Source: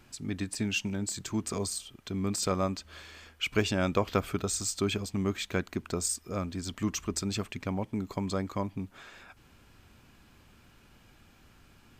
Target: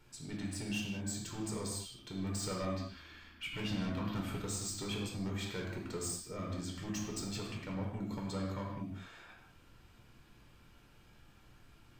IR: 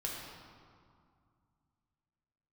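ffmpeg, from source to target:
-filter_complex "[0:a]asettb=1/sr,asplit=3[link_01][link_02][link_03];[link_01]atrim=end=2.734[link_04];[link_02]atrim=start=2.73:end=4.21,asetpts=PTS-STARTPTS,afade=type=in:duration=0.004:curve=qsin,afade=type=out:start_time=1.476:duration=0.004:curve=qsin,equalizer=frequency=250:width_type=o:width=1:gain=9,equalizer=frequency=500:width_type=o:width=1:gain=-11,equalizer=frequency=8000:width_type=o:width=1:gain=-11[link_05];[link_03]atrim=start=4.206[link_06];[link_04][link_05]acrossfade=duration=0.004:curve1=hsin:curve2=qsin[link_07];[link_07][link_06]acrossfade=duration=0.004:curve1=qsin:curve2=hsin,asoftclip=type=tanh:threshold=-28.5dB[link_08];[1:a]atrim=start_sample=2205,afade=type=out:start_time=0.26:duration=0.01,atrim=end_sample=11907[link_09];[link_08][link_09]afir=irnorm=-1:irlink=0,volume=-5dB"

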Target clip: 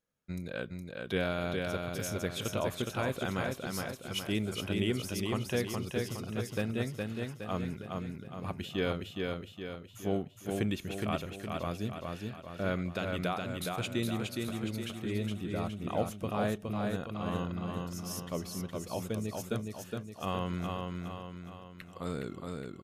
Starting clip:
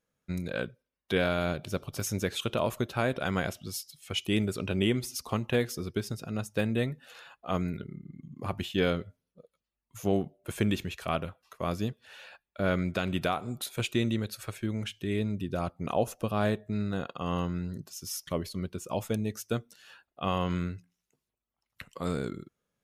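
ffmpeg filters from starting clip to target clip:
ffmpeg -i in.wav -af "aecho=1:1:415|830|1245|1660|2075|2490|2905:0.668|0.334|0.167|0.0835|0.0418|0.0209|0.0104,volume=-5dB" out.wav

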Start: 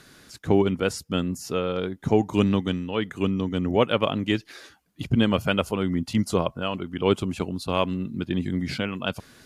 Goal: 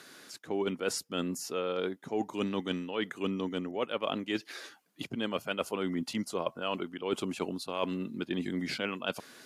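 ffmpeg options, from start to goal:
ffmpeg -i in.wav -af "highpass=290,areverse,acompressor=threshold=-28dB:ratio=12,areverse" out.wav

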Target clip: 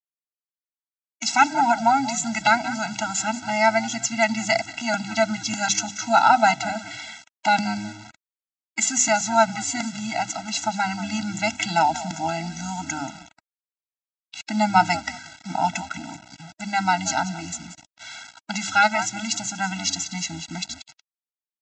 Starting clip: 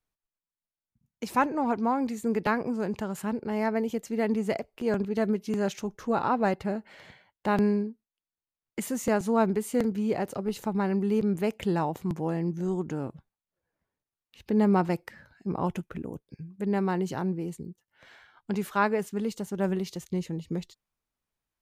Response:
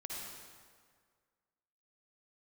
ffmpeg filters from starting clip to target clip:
-filter_complex "[0:a]aemphasis=mode=production:type=riaa,asplit=4[link_01][link_02][link_03][link_04];[link_02]adelay=182,afreqshift=-99,volume=-15dB[link_05];[link_03]adelay=364,afreqshift=-198,volume=-25.2dB[link_06];[link_04]adelay=546,afreqshift=-297,volume=-35.3dB[link_07];[link_01][link_05][link_06][link_07]amix=inputs=4:normalize=0,dynaudnorm=framelen=660:gausssize=3:maxgain=7dB,apsyclip=9dB,bandreject=frequency=50:width_type=h:width=6,bandreject=frequency=100:width_type=h:width=6,bandreject=frequency=150:width_type=h:width=6,bandreject=frequency=200:width_type=h:width=6,bandreject=frequency=250:width_type=h:width=6,bandreject=frequency=300:width_type=h:width=6,bandreject=frequency=350:width_type=h:width=6,bandreject=frequency=400:width_type=h:width=6,aresample=16000,acrusher=bits=5:mix=0:aa=0.000001,aresample=44100,highpass=78,lowshelf=frequency=440:gain=-9.5,afftfilt=real='re*eq(mod(floor(b*sr/1024/320),2),0)':imag='im*eq(mod(floor(b*sr/1024/320),2),0)':win_size=1024:overlap=0.75"

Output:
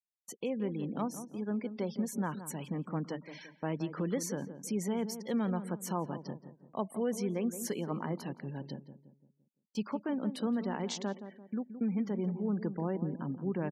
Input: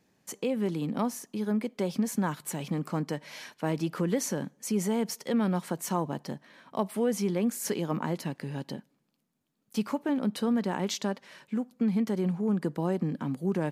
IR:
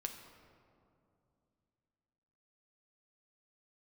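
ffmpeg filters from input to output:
-filter_complex "[0:a]afftfilt=real='re*gte(hypot(re,im),0.00891)':imag='im*gte(hypot(re,im),0.00891)':win_size=1024:overlap=0.75,agate=range=-23dB:threshold=-52dB:ratio=16:detection=peak,asplit=2[link_01][link_02];[link_02]adelay=171,lowpass=frequency=950:poles=1,volume=-10dB,asplit=2[link_03][link_04];[link_04]adelay=171,lowpass=frequency=950:poles=1,volume=0.45,asplit=2[link_05][link_06];[link_06]adelay=171,lowpass=frequency=950:poles=1,volume=0.45,asplit=2[link_07][link_08];[link_08]adelay=171,lowpass=frequency=950:poles=1,volume=0.45,asplit=2[link_09][link_10];[link_10]adelay=171,lowpass=frequency=950:poles=1,volume=0.45[link_11];[link_01][link_03][link_05][link_07][link_09][link_11]amix=inputs=6:normalize=0,volume=-5.5dB"

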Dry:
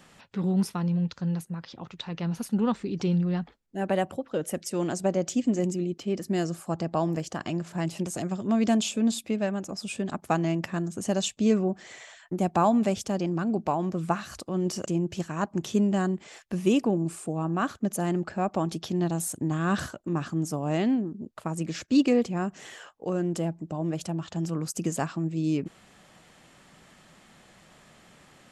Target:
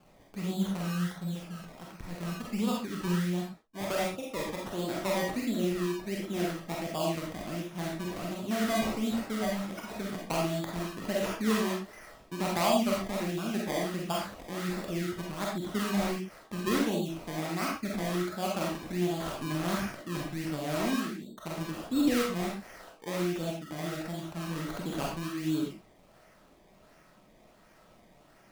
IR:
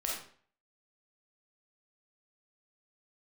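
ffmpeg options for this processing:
-filter_complex "[0:a]acrusher=samples=22:mix=1:aa=0.000001:lfo=1:lforange=22:lforate=1.4[link_01];[1:a]atrim=start_sample=2205,atrim=end_sample=6174[link_02];[link_01][link_02]afir=irnorm=-1:irlink=0,volume=-7dB"

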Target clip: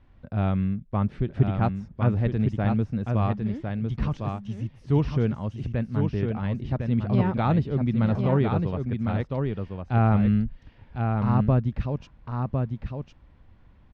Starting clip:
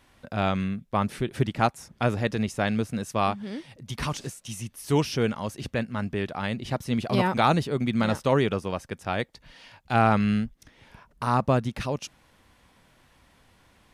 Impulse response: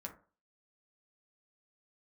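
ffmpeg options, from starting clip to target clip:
-af "lowpass=4800,aemphasis=mode=reproduction:type=riaa,aecho=1:1:1055:0.562,volume=-6.5dB"

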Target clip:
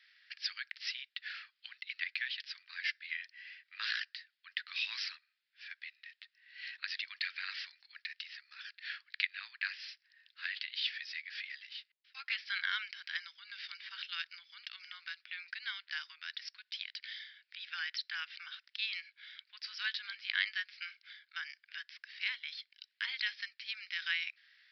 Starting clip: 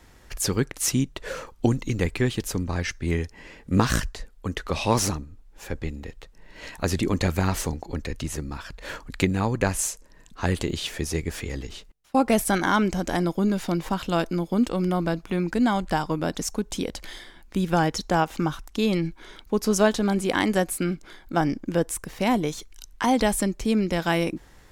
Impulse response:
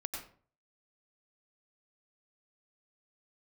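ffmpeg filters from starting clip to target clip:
-af "asuperpass=centerf=4100:order=12:qfactor=0.54,aresample=11025,aresample=44100,volume=-3dB"

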